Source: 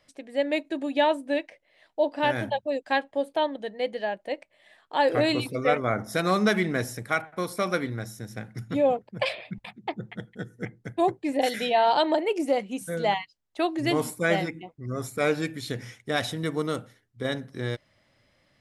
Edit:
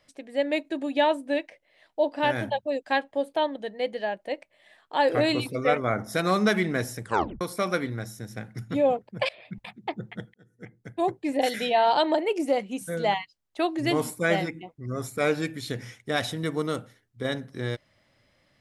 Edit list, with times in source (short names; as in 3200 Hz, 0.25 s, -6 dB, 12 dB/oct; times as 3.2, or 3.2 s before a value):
7.03 tape stop 0.38 s
9.29–9.6 fade in, from -21.5 dB
10.34–11.26 fade in